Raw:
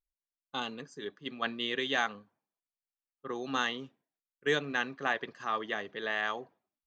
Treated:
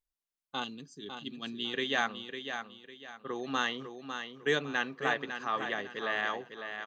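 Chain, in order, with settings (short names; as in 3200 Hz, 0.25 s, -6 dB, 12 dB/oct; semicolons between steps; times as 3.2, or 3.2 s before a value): 0.64–1.74 band shelf 1000 Hz -13.5 dB 2.6 oct; on a send: feedback echo 0.552 s, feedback 33%, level -8 dB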